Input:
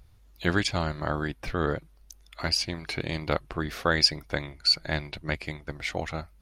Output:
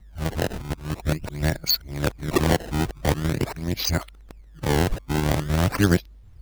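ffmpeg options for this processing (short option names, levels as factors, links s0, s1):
-af "areverse,lowshelf=f=470:g=10,acrusher=samples=22:mix=1:aa=0.000001:lfo=1:lforange=35.2:lforate=0.45"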